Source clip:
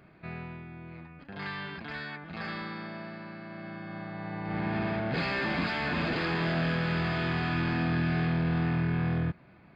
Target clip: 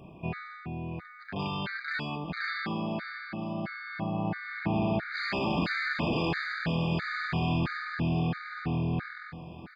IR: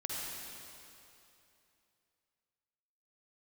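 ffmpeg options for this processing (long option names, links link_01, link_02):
-filter_complex "[0:a]acompressor=threshold=-34dB:ratio=4,aecho=1:1:1018|2036|3054|4072:0.158|0.0682|0.0293|0.0126,asplit=2[link_01][link_02];[1:a]atrim=start_sample=2205,asetrate=83790,aresample=44100[link_03];[link_02][link_03]afir=irnorm=-1:irlink=0,volume=-8.5dB[link_04];[link_01][link_04]amix=inputs=2:normalize=0,afftfilt=real='re*gt(sin(2*PI*1.5*pts/sr)*(1-2*mod(floor(b*sr/1024/1200),2)),0)':imag='im*gt(sin(2*PI*1.5*pts/sr)*(1-2*mod(floor(b*sr/1024/1200),2)),0)':win_size=1024:overlap=0.75,volume=7.5dB"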